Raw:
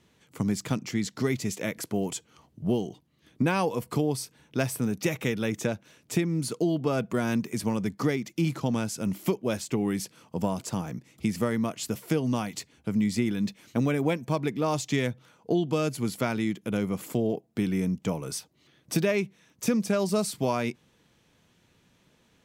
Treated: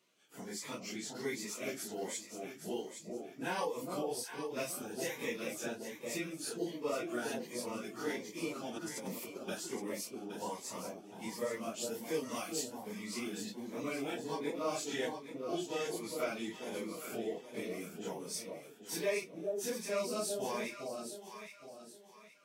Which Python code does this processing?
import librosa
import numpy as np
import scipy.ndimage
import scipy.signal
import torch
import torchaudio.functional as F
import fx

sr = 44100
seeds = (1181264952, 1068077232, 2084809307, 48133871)

y = fx.phase_scramble(x, sr, seeds[0], window_ms=100)
y = scipy.signal.sosfilt(scipy.signal.butter(2, 440.0, 'highpass', fs=sr, output='sos'), y)
y = fx.over_compress(y, sr, threshold_db=-40.0, ratio=-0.5, at=(8.77, 9.47), fade=0.02)
y = fx.high_shelf(y, sr, hz=5000.0, db=9.0, at=(12.14, 12.73))
y = fx.echo_alternate(y, sr, ms=409, hz=880.0, feedback_pct=57, wet_db=-3.5)
y = fx.notch_cascade(y, sr, direction='rising', hz=1.3)
y = y * 10.0 ** (-5.5 / 20.0)